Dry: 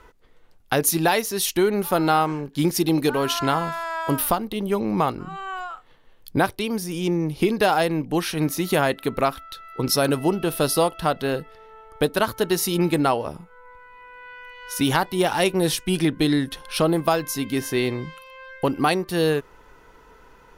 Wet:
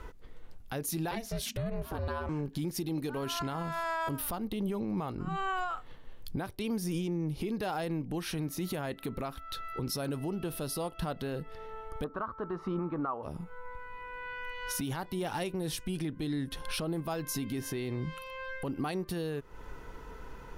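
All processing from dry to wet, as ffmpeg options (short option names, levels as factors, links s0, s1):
-filter_complex "[0:a]asettb=1/sr,asplit=3[s0][s1][s2];[s0]atrim=end=1.114[s3];[s1]atrim=start=1.11:end=2.29,asetpts=PTS-STARTPTS,afade=t=in:d=0.004:c=qsin,afade=t=out:st=1.176:d=0.004:c=qsin,highshelf=f=6100:g=-9.5,aeval=exprs='val(0)*sin(2*PI*230*n/s)':c=same[s4];[s2]atrim=start=2.286[s5];[s3][s4]acrossfade=d=0.004:c1=hsin:c2=qsin[s6];[s6][s5]acrossfade=d=0.004:c1=qsin:c2=hsin,asettb=1/sr,asplit=3[s7][s8][s9];[s7]atrim=end=12.044[s10];[s8]atrim=start=12.04:end=13.23,asetpts=PTS-STARTPTS,afade=t=in:d=0.004:c=qsin,afade=t=out:st=1.186:d=0.004:c=qsin,lowpass=f=1200:t=q:w=8,equalizer=f=120:t=o:w=0.7:g=-7.5[s11];[s9]atrim=start=13.226[s12];[s10][s11]acrossfade=d=0.004:c1=hsin:c2=qsin[s13];[s13][s12]acrossfade=d=0.004:c1=qsin:c2=hsin,lowshelf=f=260:g=9,acompressor=threshold=0.0398:ratio=16,alimiter=level_in=1.19:limit=0.0631:level=0:latency=1:release=17,volume=0.841"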